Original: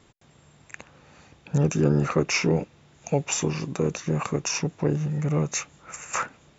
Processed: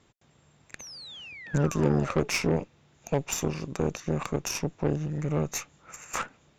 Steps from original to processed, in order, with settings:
sound drawn into the spectrogram fall, 0:00.79–0:02.28, 410–6,500 Hz −38 dBFS
harmonic generator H 3 −22 dB, 6 −21 dB, 7 −35 dB, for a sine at −9.5 dBFS
level −2 dB

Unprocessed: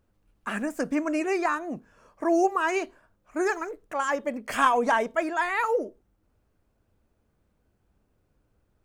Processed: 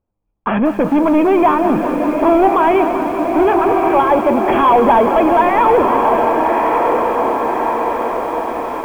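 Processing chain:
feedback delay with all-pass diffusion 1,208 ms, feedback 55%, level −10 dB
in parallel at −3 dB: downward compressor 20 to 1, threshold −31 dBFS, peak gain reduction 16.5 dB
on the sum: leveller curve on the samples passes 5
Chebyshev low-pass with heavy ripple 3,400 Hz, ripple 9 dB
tilt shelving filter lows +8.5 dB, about 1,500 Hz
feedback echo at a low word length 193 ms, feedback 80%, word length 6 bits, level −11 dB
level −1.5 dB

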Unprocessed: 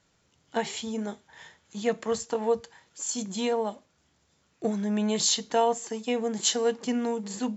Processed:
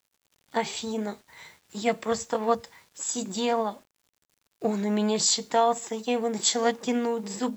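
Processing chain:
formants moved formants +2 semitones
bit-depth reduction 10 bits, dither none
level +1.5 dB

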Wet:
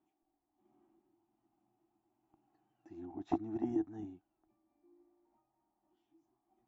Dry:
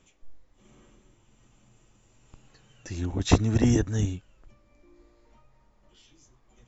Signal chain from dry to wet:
pair of resonant band-passes 500 Hz, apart 1.2 octaves
level −4.5 dB

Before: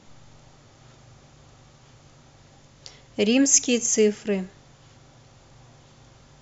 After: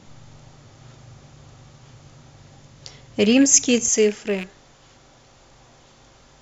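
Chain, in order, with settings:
loose part that buzzes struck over −32 dBFS, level −24 dBFS
parametric band 120 Hz +4 dB 1.6 octaves, from 0:03.88 −8 dB
level +3 dB

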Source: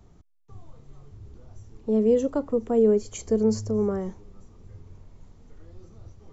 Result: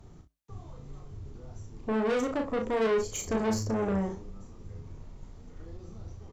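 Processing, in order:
flanger 0.62 Hz, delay 7.2 ms, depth 4.8 ms, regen −77%
tube saturation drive 34 dB, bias 0.3
on a send: ambience of single reflections 36 ms −5 dB, 62 ms −14 dB
on the sum: level +7.5 dB

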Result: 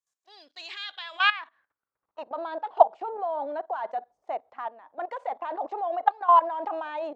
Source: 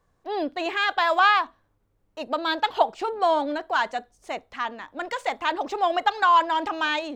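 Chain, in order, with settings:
output level in coarse steps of 17 dB
band-pass filter sweep 7,100 Hz → 740 Hz, 0:00.24–0:02.49
level +7.5 dB

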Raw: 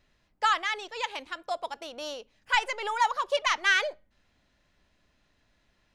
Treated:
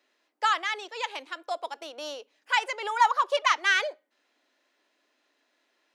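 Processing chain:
0:02.94–0:03.52: dynamic equaliser 1,200 Hz, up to +6 dB, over −35 dBFS, Q 1.4
Butterworth high-pass 270 Hz 48 dB per octave

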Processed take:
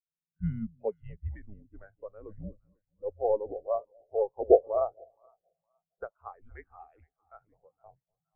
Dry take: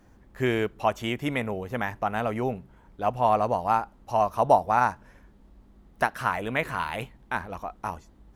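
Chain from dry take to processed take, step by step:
frequency shifter −210 Hz
echo with a time of its own for lows and highs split 700 Hz, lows 245 ms, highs 465 ms, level −11 dB
0:06.12–0:07.41: dynamic equaliser 180 Hz, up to −5 dB, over −44 dBFS, Q 0.77
every bin expanded away from the loudest bin 2.5 to 1

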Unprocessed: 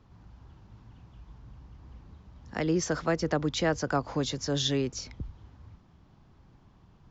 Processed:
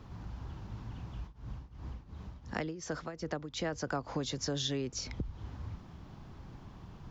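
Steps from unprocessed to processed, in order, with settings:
downward compressor 4 to 1, threshold −43 dBFS, peak gain reduction 18 dB
0:01.26–0:03.71: shaped tremolo triangle 2.8 Hz, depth 95% → 65%
level +8.5 dB

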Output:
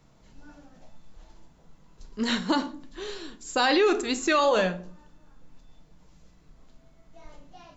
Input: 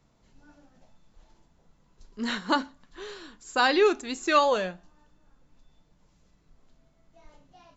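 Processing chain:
0:02.24–0:03.66: parametric band 1,300 Hz −6 dB 1.4 octaves
convolution reverb RT60 0.50 s, pre-delay 6 ms, DRR 10 dB
brickwall limiter −19 dBFS, peak gain reduction 9.5 dB
level +5.5 dB

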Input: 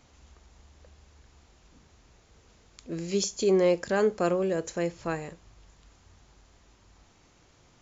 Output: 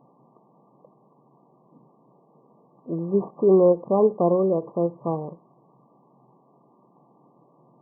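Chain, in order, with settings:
variable-slope delta modulation 32 kbit/s
brick-wall band-pass 120–1,200 Hz
every ending faded ahead of time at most 360 dB per second
level +6.5 dB

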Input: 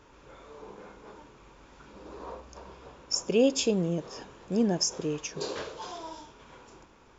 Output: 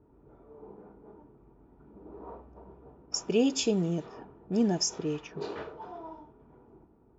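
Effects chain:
low-pass that shuts in the quiet parts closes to 450 Hz, open at −24 dBFS
floating-point word with a short mantissa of 8 bits
notch comb filter 540 Hz

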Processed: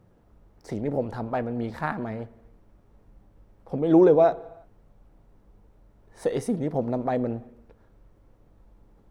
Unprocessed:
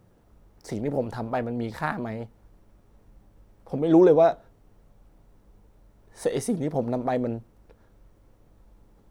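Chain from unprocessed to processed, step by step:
high-shelf EQ 3,600 Hz −8 dB
convolution reverb, pre-delay 56 ms, DRR 20 dB

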